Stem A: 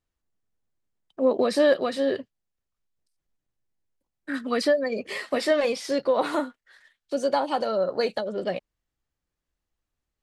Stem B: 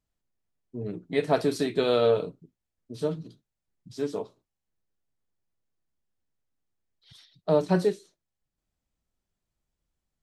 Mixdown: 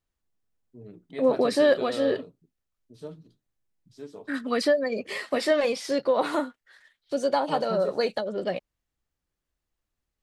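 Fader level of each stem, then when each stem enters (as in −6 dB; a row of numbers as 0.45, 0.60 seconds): −0.5, −11.5 decibels; 0.00, 0.00 seconds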